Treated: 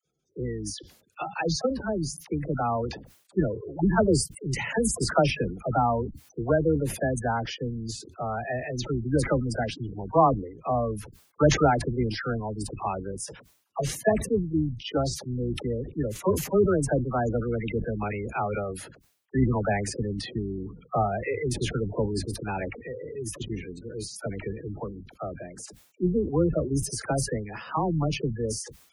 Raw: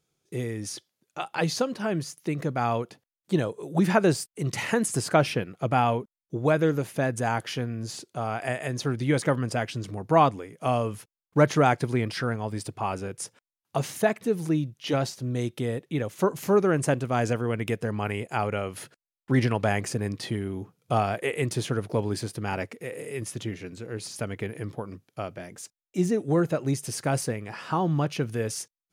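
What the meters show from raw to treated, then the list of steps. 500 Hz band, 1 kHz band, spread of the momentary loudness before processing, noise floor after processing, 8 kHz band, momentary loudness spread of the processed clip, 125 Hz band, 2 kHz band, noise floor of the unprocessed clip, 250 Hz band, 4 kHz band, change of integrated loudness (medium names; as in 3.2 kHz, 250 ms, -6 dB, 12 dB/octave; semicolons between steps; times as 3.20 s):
0.0 dB, -1.0 dB, 13 LU, -62 dBFS, +1.0 dB, 13 LU, -1.0 dB, -2.5 dB, under -85 dBFS, -0.5 dB, 0.0 dB, -0.5 dB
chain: octave divider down 2 oct, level -5 dB; high-pass 93 Hz 6 dB/octave; spectral gate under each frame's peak -15 dB strong; phase dispersion lows, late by 54 ms, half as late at 670 Hz; decay stretcher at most 100 dB/s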